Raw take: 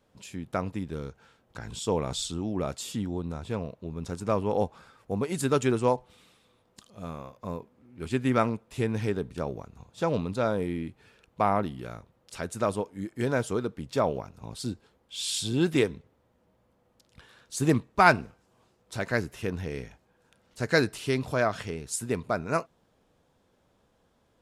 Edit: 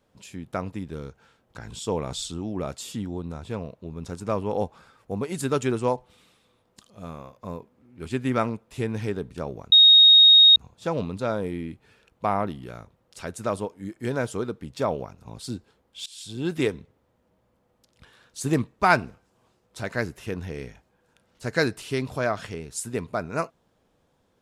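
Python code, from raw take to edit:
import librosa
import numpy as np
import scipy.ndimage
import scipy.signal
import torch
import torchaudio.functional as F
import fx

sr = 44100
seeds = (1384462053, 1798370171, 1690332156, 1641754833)

y = fx.edit(x, sr, fx.insert_tone(at_s=9.72, length_s=0.84, hz=3740.0, db=-9.5),
    fx.fade_in_from(start_s=15.22, length_s=0.61, floor_db=-21.0), tone=tone)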